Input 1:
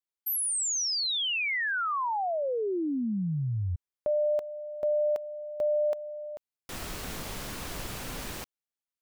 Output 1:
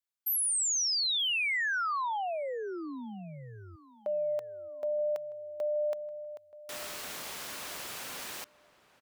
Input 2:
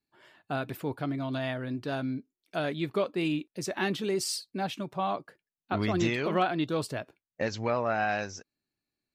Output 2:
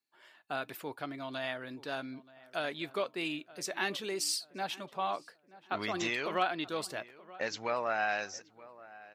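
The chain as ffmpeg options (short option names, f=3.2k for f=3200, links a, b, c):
-filter_complex "[0:a]highpass=f=860:p=1,asplit=2[a][b];[b]adelay=928,lowpass=f=2k:p=1,volume=-19dB,asplit=2[c][d];[d]adelay=928,lowpass=f=2k:p=1,volume=0.37,asplit=2[e][f];[f]adelay=928,lowpass=f=2k:p=1,volume=0.37[g];[c][e][g]amix=inputs=3:normalize=0[h];[a][h]amix=inputs=2:normalize=0"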